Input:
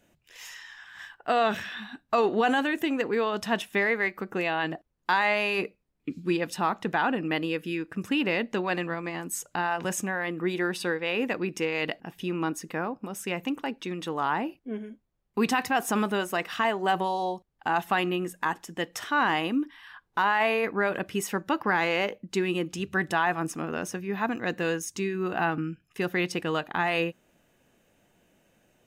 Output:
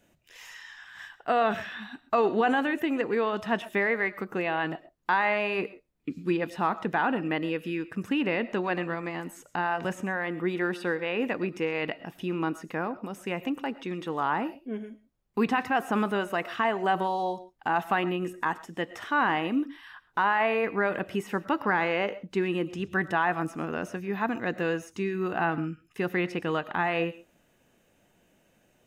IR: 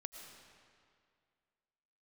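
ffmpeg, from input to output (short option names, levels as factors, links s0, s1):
-filter_complex "[0:a]acrossover=split=2800[s0][s1];[s1]acompressor=threshold=0.00355:ratio=4:attack=1:release=60[s2];[s0][s2]amix=inputs=2:normalize=0,asplit=2[s3][s4];[1:a]atrim=start_sample=2205,atrim=end_sample=6174[s5];[s4][s5]afir=irnorm=-1:irlink=0,volume=1.5[s6];[s3][s6]amix=inputs=2:normalize=0,volume=0.531"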